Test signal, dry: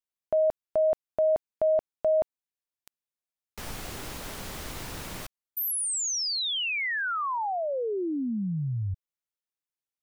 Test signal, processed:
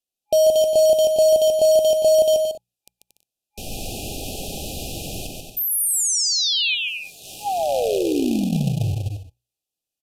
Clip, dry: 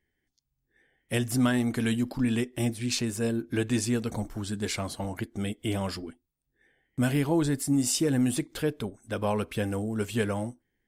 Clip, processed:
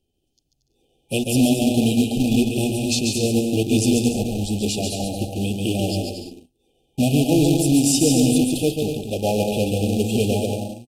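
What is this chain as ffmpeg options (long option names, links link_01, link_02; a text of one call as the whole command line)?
ffmpeg -i in.wav -filter_complex "[0:a]bandreject=frequency=60:width_type=h:width=6,bandreject=frequency=120:width_type=h:width=6,bandreject=frequency=180:width_type=h:width=6,aecho=1:1:140|231|290.2|328.6|353.6:0.631|0.398|0.251|0.158|0.1,acrossover=split=1200[link_01][link_02];[link_01]acrusher=bits=2:mode=log:mix=0:aa=0.000001[link_03];[link_03][link_02]amix=inputs=2:normalize=0,aresample=32000,aresample=44100,afftfilt=real='re*(1-between(b*sr/4096,830,2400))':imag='im*(1-between(b*sr/4096,830,2400))':win_size=4096:overlap=0.75,volume=6.5dB" out.wav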